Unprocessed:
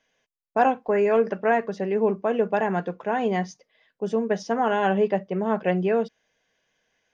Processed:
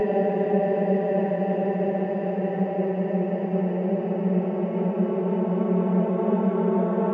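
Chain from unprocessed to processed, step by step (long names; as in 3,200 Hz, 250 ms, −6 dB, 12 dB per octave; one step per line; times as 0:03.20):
high-pass filter 57 Hz
extreme stretch with random phases 29×, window 0.50 s, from 0:05.16
spectral tilt −2 dB per octave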